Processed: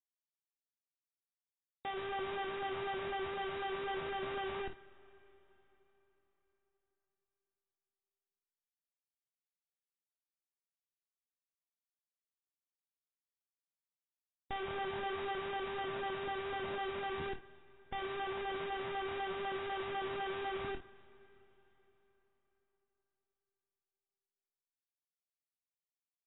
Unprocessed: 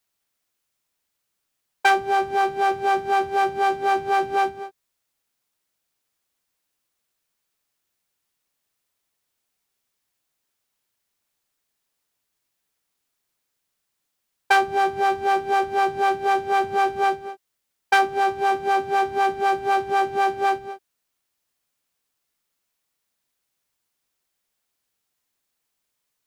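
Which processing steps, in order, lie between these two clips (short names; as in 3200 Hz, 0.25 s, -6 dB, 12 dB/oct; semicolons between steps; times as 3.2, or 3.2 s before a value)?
inverse Chebyshev low-pass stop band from 1700 Hz, stop band 50 dB; expander -30 dBFS; limiter -27.5 dBFS, peak gain reduction 11.5 dB; Schmitt trigger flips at -47.5 dBFS; on a send: early reflections 24 ms -9 dB, 53 ms -12 dB; on the sum: digital reverb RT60 4.2 s, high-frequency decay 0.8×, pre-delay 5 ms, DRR 18 dB; AAC 16 kbps 16000 Hz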